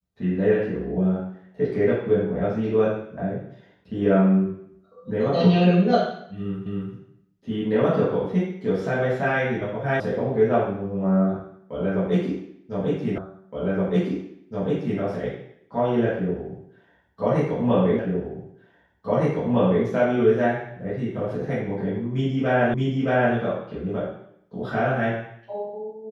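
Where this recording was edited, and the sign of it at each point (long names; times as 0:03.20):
0:06.66: the same again, the last 0.27 s
0:10.00: cut off before it has died away
0:13.18: the same again, the last 1.82 s
0:17.99: the same again, the last 1.86 s
0:22.74: the same again, the last 0.62 s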